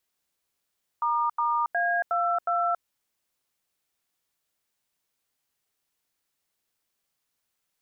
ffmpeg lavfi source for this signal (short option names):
-f lavfi -i "aevalsrc='0.0562*clip(min(mod(t,0.363),0.277-mod(t,0.363))/0.002,0,1)*(eq(floor(t/0.363),0)*(sin(2*PI*941*mod(t,0.363))+sin(2*PI*1209*mod(t,0.363)))+eq(floor(t/0.363),1)*(sin(2*PI*941*mod(t,0.363))+sin(2*PI*1209*mod(t,0.363)))+eq(floor(t/0.363),2)*(sin(2*PI*697*mod(t,0.363))+sin(2*PI*1633*mod(t,0.363)))+eq(floor(t/0.363),3)*(sin(2*PI*697*mod(t,0.363))+sin(2*PI*1336*mod(t,0.363)))+eq(floor(t/0.363),4)*(sin(2*PI*697*mod(t,0.363))+sin(2*PI*1336*mod(t,0.363))))':d=1.815:s=44100"